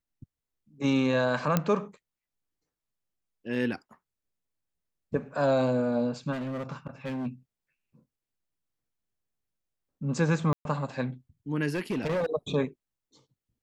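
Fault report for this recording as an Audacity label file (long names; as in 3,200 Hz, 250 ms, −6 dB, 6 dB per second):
1.570000	1.570000	click −10 dBFS
6.320000	7.270000	clipping −30.5 dBFS
10.530000	10.650000	drop-out 122 ms
11.740000	12.260000	clipping −25 dBFS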